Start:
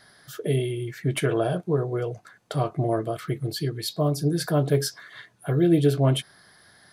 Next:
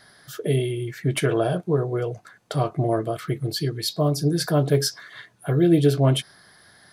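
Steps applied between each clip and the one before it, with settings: dynamic EQ 5300 Hz, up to +4 dB, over -47 dBFS, Q 1.9; gain +2 dB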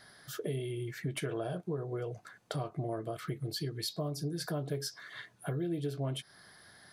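compressor 4:1, threshold -30 dBFS, peak gain reduction 14.5 dB; gain -4.5 dB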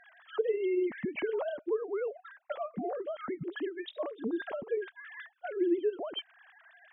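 sine-wave speech; gain +3 dB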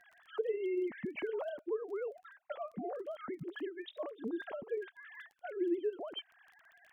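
crackle 16/s -46 dBFS; gain -5 dB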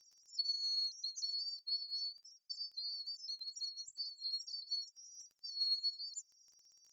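band-swap scrambler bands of 4000 Hz; gain -3.5 dB

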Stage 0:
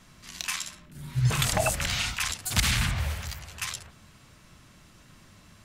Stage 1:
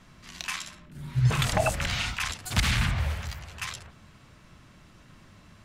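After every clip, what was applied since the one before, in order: high shelf 5100 Hz -10.5 dB; gain +1.5 dB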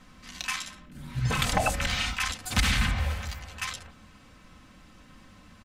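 comb 3.9 ms, depth 53%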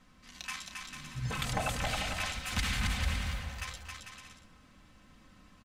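bouncing-ball echo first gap 0.27 s, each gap 0.65×, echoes 5; gain -8.5 dB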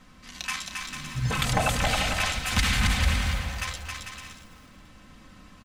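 lo-fi delay 0.334 s, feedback 35%, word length 9-bit, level -15 dB; gain +8.5 dB

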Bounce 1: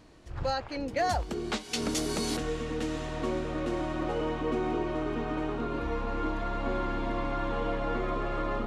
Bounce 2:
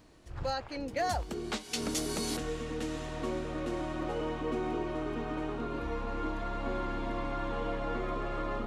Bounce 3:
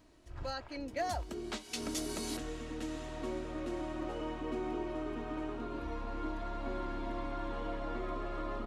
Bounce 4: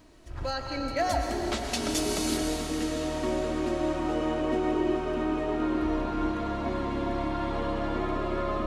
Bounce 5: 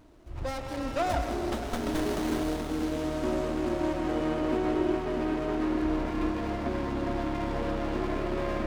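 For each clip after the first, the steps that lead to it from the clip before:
high shelf 10000 Hz +8.5 dB; gain -3.5 dB
comb 3.1 ms, depth 36%; gain -5 dB
digital reverb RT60 4.4 s, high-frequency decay 0.95×, pre-delay 75 ms, DRR 1.5 dB; gain +7.5 dB
running maximum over 17 samples

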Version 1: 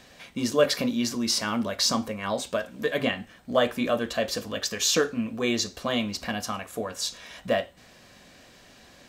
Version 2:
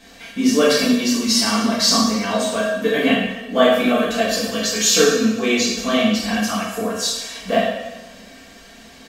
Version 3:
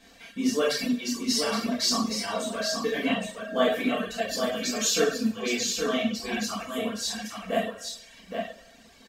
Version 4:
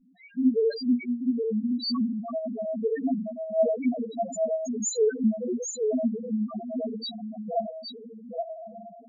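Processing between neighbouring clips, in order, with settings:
comb 4.4 ms, depth 68%; two-slope reverb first 0.9 s, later 2.3 s, DRR -8 dB; gain -1 dB
reverb removal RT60 1.2 s; echo 0.819 s -5.5 dB; gain -8.5 dB
diffused feedback echo 1.072 s, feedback 41%, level -10 dB; loudest bins only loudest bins 1; gain +8.5 dB

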